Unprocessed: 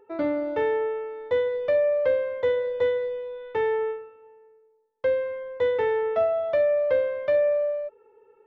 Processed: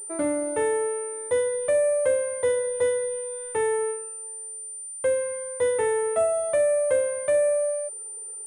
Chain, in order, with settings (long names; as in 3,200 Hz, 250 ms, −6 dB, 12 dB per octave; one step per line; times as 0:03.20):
switching amplifier with a slow clock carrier 9,100 Hz